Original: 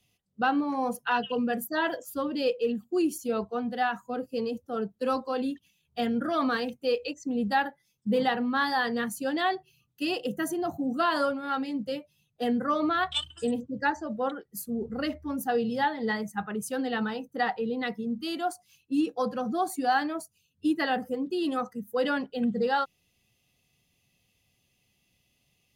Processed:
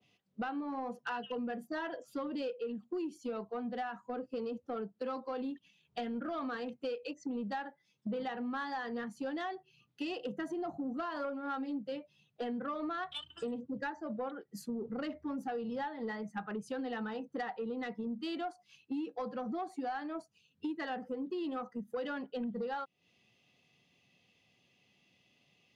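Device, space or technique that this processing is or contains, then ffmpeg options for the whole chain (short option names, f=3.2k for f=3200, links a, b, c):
AM radio: -filter_complex "[0:a]asettb=1/sr,asplit=3[a][b][c];[a]atrim=end=11.244[d];[b]atrim=start=11.24:end=11.79,asetpts=PTS-STARTPTS,afade=t=in:d=0.004:c=qsin,afade=t=out:st=0.546:d=0.004:c=qsin,aecho=1:1:3.7:0.93,atrim=end_sample=24255[e];[c]atrim=start=11.786[f];[d][e]acrossfade=d=0.004:c1=hsin:c2=qsin[g];[g][f]acrossfade=d=0.004:c1=qsin:c2=hsin,highpass=170,lowpass=4k,acompressor=threshold=-39dB:ratio=6,asoftclip=type=tanh:threshold=-32.5dB,adynamicequalizer=threshold=0.00158:dfrequency=1700:dqfactor=0.7:tfrequency=1700:tqfactor=0.7:attack=5:release=100:ratio=0.375:range=2:mode=cutabove:tftype=highshelf,volume=4dB"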